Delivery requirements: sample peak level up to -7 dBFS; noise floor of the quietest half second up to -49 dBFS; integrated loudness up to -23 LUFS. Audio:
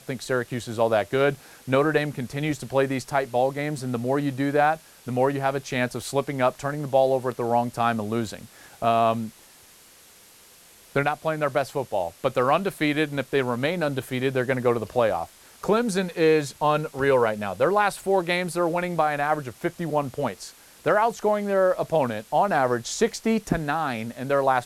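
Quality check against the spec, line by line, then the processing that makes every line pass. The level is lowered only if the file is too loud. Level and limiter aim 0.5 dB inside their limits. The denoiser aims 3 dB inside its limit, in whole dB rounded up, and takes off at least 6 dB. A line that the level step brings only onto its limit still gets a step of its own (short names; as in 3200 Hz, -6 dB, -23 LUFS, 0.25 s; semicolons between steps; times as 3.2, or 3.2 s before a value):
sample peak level -8.5 dBFS: OK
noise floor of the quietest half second -52 dBFS: OK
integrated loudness -24.5 LUFS: OK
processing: none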